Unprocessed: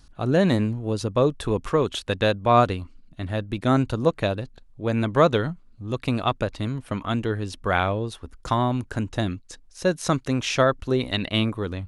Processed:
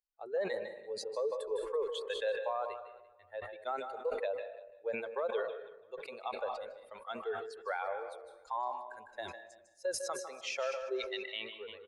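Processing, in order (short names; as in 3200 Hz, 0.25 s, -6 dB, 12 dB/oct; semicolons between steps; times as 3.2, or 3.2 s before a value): per-bin expansion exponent 2; elliptic high-pass 460 Hz, stop band 40 dB; tilt shelf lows +5 dB; compressor, threshold -23 dBFS, peak gain reduction 9.5 dB; high shelf 3600 Hz -7 dB; limiter -27 dBFS, peak gain reduction 11.5 dB; feedback echo 0.336 s, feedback 23%, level -21 dB; on a send at -8 dB: reverb RT60 0.80 s, pre-delay 0.153 s; on the sum: sustainer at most 61 dB/s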